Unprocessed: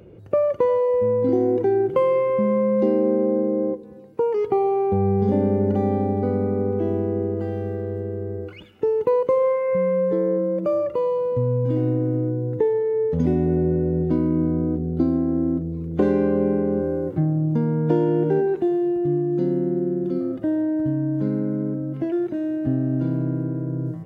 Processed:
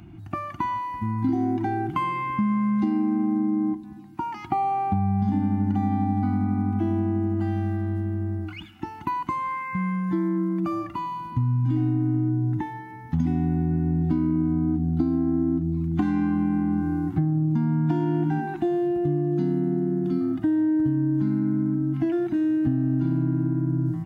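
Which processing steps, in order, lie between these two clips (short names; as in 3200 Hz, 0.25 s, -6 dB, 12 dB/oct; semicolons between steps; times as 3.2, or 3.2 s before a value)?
elliptic band-stop 330–710 Hz, stop band 40 dB; compressor, threshold -24 dBFS, peak gain reduction 8 dB; gain +4.5 dB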